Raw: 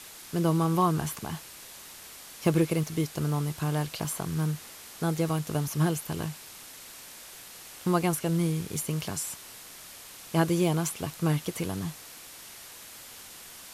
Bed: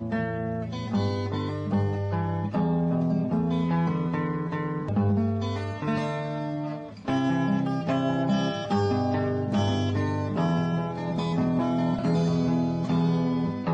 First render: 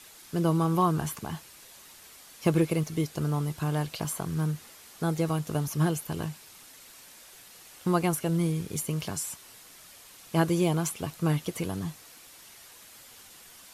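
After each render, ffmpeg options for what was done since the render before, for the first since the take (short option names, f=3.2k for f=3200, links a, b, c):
-af "afftdn=nr=6:nf=-47"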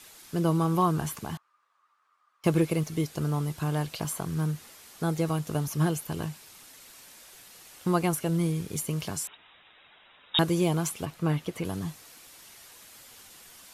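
-filter_complex "[0:a]asettb=1/sr,asplit=3[a][b][c];[a]atrim=end=1.374[d];[b]atrim=start=1.37:end=2.44,asetpts=PTS-STARTPTS,afade=t=in:d=0.004:c=qsin,afade=t=out:st=1.066:d=0.004:c=qsin,bandpass=f=1.2k:t=q:w=11[e];[c]atrim=start=2.436[f];[d][e]acrossfade=d=0.004:c1=hsin:c2=qsin[g];[g][f]acrossfade=d=0.004:c1=qsin:c2=hsin,asettb=1/sr,asplit=3[h][i][j];[h]atrim=end=9.274[k];[i]atrim=start=9.27:end=10.39,asetpts=PTS-STARTPTS,afade=t=in:d=0.004:c=qsin,afade=t=out:st=1.116:d=0.004:c=qsin,lowpass=f=3.3k:t=q:w=0.5098,lowpass=f=3.3k:t=q:w=0.6013,lowpass=f=3.3k:t=q:w=0.9,lowpass=f=3.3k:t=q:w=2.563,afreqshift=-3900[l];[j]atrim=start=10.386[m];[k][l]acrossfade=d=0.004:c1=hsin:c2=qsin[n];[n][m]acrossfade=d=0.004:c1=qsin:c2=hsin,asettb=1/sr,asplit=3[o][p][q];[o]atrim=end=11.054[r];[p]atrim=start=11.05:end=11.65,asetpts=PTS-STARTPTS,afade=t=in:d=0.004:c=qsin,afade=t=out:st=0.596:d=0.004:c=qsin,bass=f=250:g=-1,treble=f=4k:g=-8[s];[q]atrim=start=11.646[t];[r][s]acrossfade=d=0.004:c1=hsin:c2=qsin[u];[u][t]acrossfade=d=0.004:c1=qsin:c2=hsin"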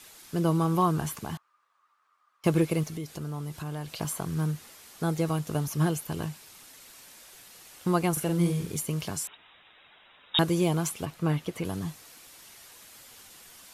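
-filter_complex "[0:a]asettb=1/sr,asplit=3[a][b][c];[a]atrim=end=2.894[d];[b]atrim=start=2.89:end=3.97,asetpts=PTS-STARTPTS,afade=t=in:d=0.004:c=qsin,afade=t=out:st=1.076:d=0.004:c=qsin,acompressor=threshold=-34dB:ratio=3:attack=3.2:release=140:knee=1:detection=peak[e];[c]atrim=start=3.966[f];[d][e]acrossfade=d=0.004:c1=hsin:c2=qsin[g];[g][f]acrossfade=d=0.004:c1=qsin:c2=hsin,asettb=1/sr,asplit=3[h][i][j];[h]atrim=end=8.124[k];[i]atrim=start=8.12:end=8.72,asetpts=PTS-STARTPTS,afade=t=in:d=0.004:c=qsin,afade=t=out:st=0.596:d=0.004:c=qsin,asplit=2[l][m];[m]adelay=46,volume=-4.5dB[n];[l][n]amix=inputs=2:normalize=0,atrim=end_sample=26460[o];[j]atrim=start=8.716[p];[k][o]acrossfade=d=0.004:c1=hsin:c2=qsin[q];[q][p]acrossfade=d=0.004:c1=qsin:c2=hsin"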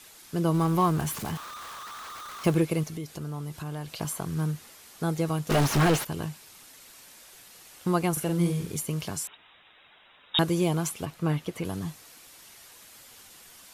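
-filter_complex "[0:a]asettb=1/sr,asplit=3[a][b][c];[a]atrim=end=0.544[d];[b]atrim=start=0.54:end=2.55,asetpts=PTS-STARTPTS,afade=t=in:d=0.004:c=qsin,afade=t=out:st=2.006:d=0.004:c=qsin,aeval=exprs='val(0)+0.5*0.0178*sgn(val(0))':c=same[e];[c]atrim=start=2.546[f];[d][e]acrossfade=d=0.004:c1=hsin:c2=qsin[g];[g][f]acrossfade=d=0.004:c1=qsin:c2=hsin,asplit=3[h][i][j];[h]afade=t=out:st=5.49:d=0.02[k];[i]asplit=2[l][m];[m]highpass=f=720:p=1,volume=39dB,asoftclip=type=tanh:threshold=-14dB[n];[l][n]amix=inputs=2:normalize=0,lowpass=f=2k:p=1,volume=-6dB,afade=t=in:st=5.49:d=0.02,afade=t=out:st=6.03:d=0.02[o];[j]afade=t=in:st=6.03:d=0.02[p];[k][o][p]amix=inputs=3:normalize=0"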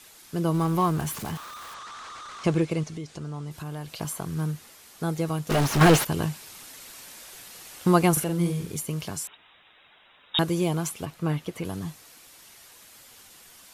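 -filter_complex "[0:a]asettb=1/sr,asplit=3[a][b][c];[a]atrim=end=1.744[d];[b]atrim=start=1.74:end=3.51,asetpts=PTS-STARTPTS,afade=t=in:d=0.004:c=qsin,afade=t=out:st=1.766:d=0.004:c=qsin,lowpass=f=8.3k:w=0.5412,lowpass=f=8.3k:w=1.3066[e];[c]atrim=start=3.506[f];[d][e]acrossfade=d=0.004:c1=hsin:c2=qsin[g];[g][f]acrossfade=d=0.004:c1=qsin:c2=hsin,asplit=3[h][i][j];[h]atrim=end=5.812[k];[i]atrim=start=5.808:end=8.242,asetpts=PTS-STARTPTS,volume=6dB[l];[j]atrim=start=8.238[m];[k][l]acrossfade=d=0.004:c1=hsin:c2=hsin[n];[n][m]acrossfade=d=0.004:c1=hsin:c2=hsin"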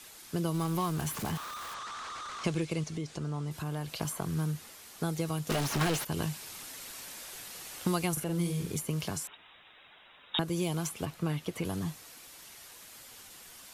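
-filter_complex "[0:a]acrossover=split=110|2400[a][b][c];[a]acompressor=threshold=-43dB:ratio=4[d];[b]acompressor=threshold=-30dB:ratio=4[e];[c]acompressor=threshold=-36dB:ratio=4[f];[d][e][f]amix=inputs=3:normalize=0"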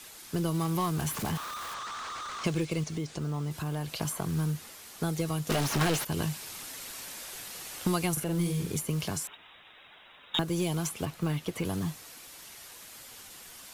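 -filter_complex "[0:a]asplit=2[a][b];[b]aeval=exprs='clip(val(0),-1,0.0251)':c=same,volume=-9dB[c];[a][c]amix=inputs=2:normalize=0,acrusher=bits=7:mode=log:mix=0:aa=0.000001"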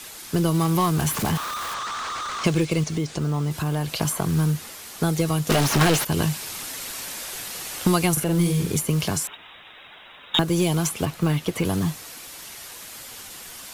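-af "volume=8.5dB"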